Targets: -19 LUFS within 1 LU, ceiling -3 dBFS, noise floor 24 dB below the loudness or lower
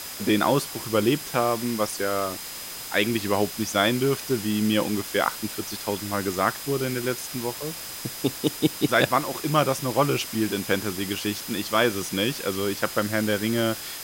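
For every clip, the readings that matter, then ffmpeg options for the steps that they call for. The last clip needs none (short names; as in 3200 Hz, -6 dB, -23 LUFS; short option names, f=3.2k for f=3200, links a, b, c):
steady tone 5000 Hz; tone level -43 dBFS; noise floor -37 dBFS; noise floor target -49 dBFS; loudness -25.0 LUFS; peak -6.5 dBFS; loudness target -19.0 LUFS
-> -af "bandreject=f=5k:w=30"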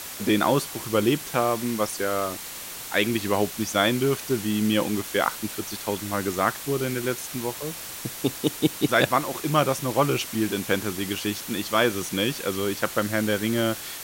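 steady tone none; noise floor -37 dBFS; noise floor target -49 dBFS
-> -af "afftdn=nr=12:nf=-37"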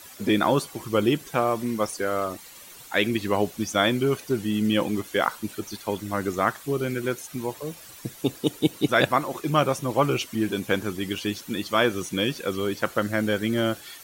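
noise floor -46 dBFS; noise floor target -50 dBFS
-> -af "afftdn=nr=6:nf=-46"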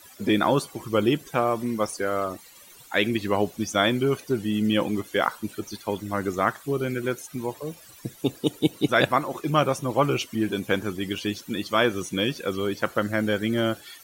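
noise floor -49 dBFS; noise floor target -50 dBFS
-> -af "afftdn=nr=6:nf=-49"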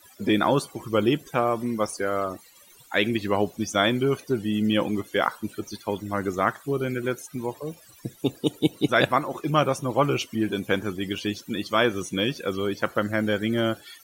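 noise floor -53 dBFS; loudness -25.5 LUFS; peak -6.5 dBFS; loudness target -19.0 LUFS
-> -af "volume=6.5dB,alimiter=limit=-3dB:level=0:latency=1"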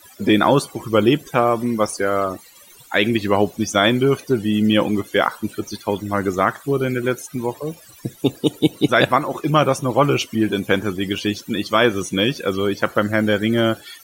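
loudness -19.5 LUFS; peak -3.0 dBFS; noise floor -46 dBFS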